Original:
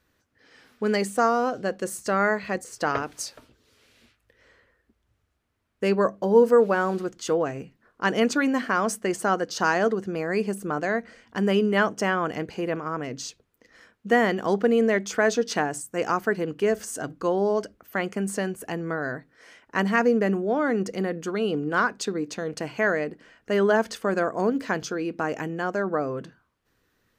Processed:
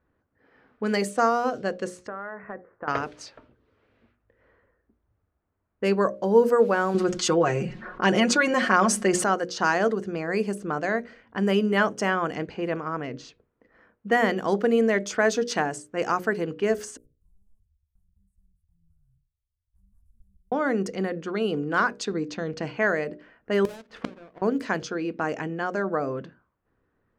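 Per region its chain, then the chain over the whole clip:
2.07–2.88 s: steep low-pass 1.8 kHz + bass shelf 370 Hz -8.5 dB + compression 16:1, threshold -29 dBFS
6.94–9.24 s: low-pass 9.1 kHz + comb 5.5 ms, depth 78% + level flattener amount 50%
16.97–20.52 s: block-companded coder 3-bit + inverse Chebyshev band-stop 250–4100 Hz, stop band 60 dB + compression 1.5:1, threshold -58 dBFS
22.12–22.76 s: low-pass 7.8 kHz 24 dB/octave + tone controls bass +4 dB, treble +3 dB
23.65–24.42 s: square wave that keeps the level + inverted gate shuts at -19 dBFS, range -27 dB
whole clip: hum notches 60/120/180/240/300/360/420/480/540/600 Hz; level-controlled noise filter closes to 1.2 kHz, open at -21.5 dBFS

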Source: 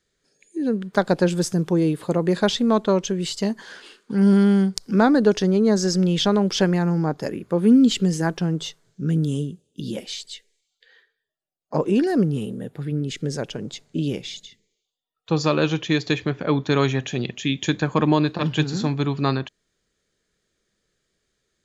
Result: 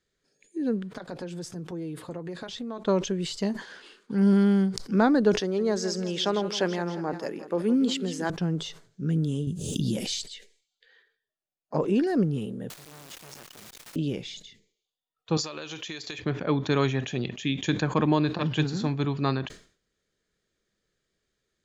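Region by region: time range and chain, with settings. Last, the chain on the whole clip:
0.92–2.85 s: compression 5:1, threshold -27 dBFS + comb of notches 200 Hz
5.40–8.30 s: high-pass 300 Hz + multi-tap echo 165/356 ms -13/-17.5 dB
9.47–10.22 s: tone controls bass +10 dB, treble +12 dB + swell ahead of each attack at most 37 dB/s
12.70–13.96 s: pre-emphasis filter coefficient 0.8 + word length cut 6-bit, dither triangular + transformer saturation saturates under 1.8 kHz
15.37–16.19 s: RIAA curve recording + compression 16:1, threshold -27 dBFS
whole clip: treble shelf 8.7 kHz -8 dB; decay stretcher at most 130 dB/s; trim -4.5 dB

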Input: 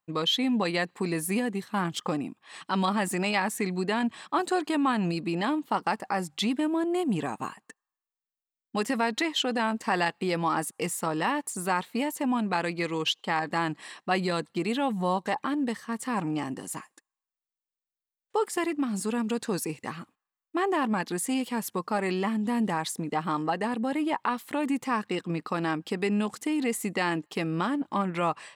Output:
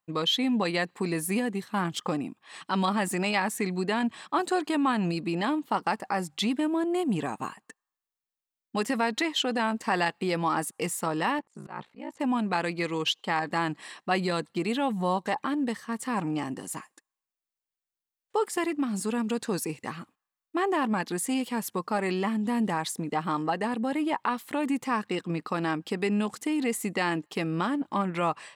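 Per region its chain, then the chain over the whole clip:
11.39–12.20 s: slow attack 168 ms + ring modulator 29 Hz + tape spacing loss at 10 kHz 23 dB
whole clip: none

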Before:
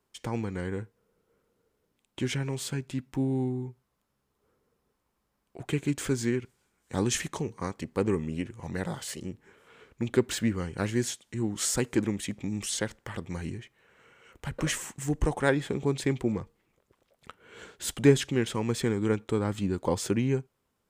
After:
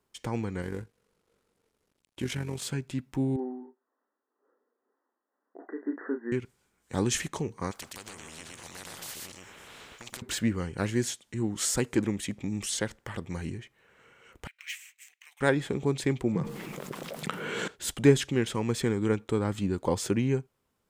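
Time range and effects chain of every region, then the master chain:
0.62–2.63 s: CVSD coder 64 kbps + AM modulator 47 Hz, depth 40%
3.36–6.32 s: brick-wall FIR band-pass 230–2000 Hz + tremolo triangle 2 Hz, depth 55% + doubling 33 ms -7.5 dB
7.71–10.22 s: compression, threshold -29 dBFS + delay 119 ms -4.5 dB + spectrum-flattening compressor 4:1
14.47–15.41 s: ladder high-pass 2.1 kHz, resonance 65% + decimation joined by straight lines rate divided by 2×
16.35–17.68 s: resonant low shelf 110 Hz -12.5 dB, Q 3 + level flattener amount 70%
whole clip: none

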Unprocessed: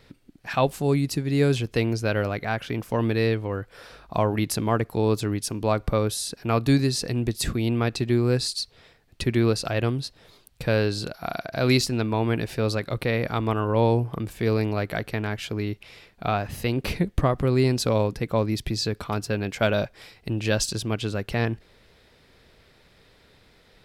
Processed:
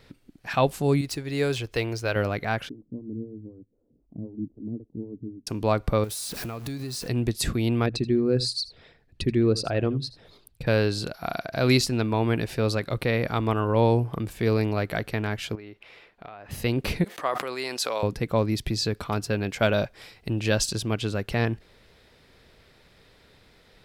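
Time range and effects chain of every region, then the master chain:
1.01–2.16 s: median filter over 3 samples + peaking EQ 190 Hz -12.5 dB 1.2 oct
2.69–5.47 s: four-pole ladder low-pass 310 Hz, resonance 55% + lamp-driven phase shifter 3.9 Hz
6.04–7.08 s: jump at every zero crossing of -31.5 dBFS + treble shelf 11 kHz +9.5 dB + compression 10:1, threshold -30 dBFS
7.86–10.67 s: resonances exaggerated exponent 1.5 + hum notches 60/120/180 Hz + delay 80 ms -17.5 dB
15.55–16.51 s: tone controls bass -12 dB, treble -13 dB + compression 10:1, threshold -38 dBFS
17.04–18.03 s: high-pass 740 Hz + decay stretcher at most 49 dB/s
whole clip: none

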